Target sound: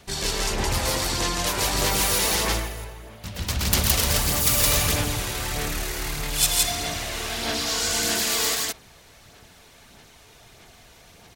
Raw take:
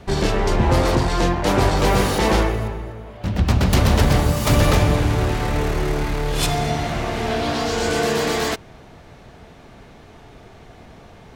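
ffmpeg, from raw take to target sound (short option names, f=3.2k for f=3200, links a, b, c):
-af "aecho=1:1:107.9|166.2:0.316|0.891,crystalizer=i=9.5:c=0,aphaser=in_gain=1:out_gain=1:delay=2.1:decay=0.29:speed=1.6:type=sinusoidal,volume=-15dB"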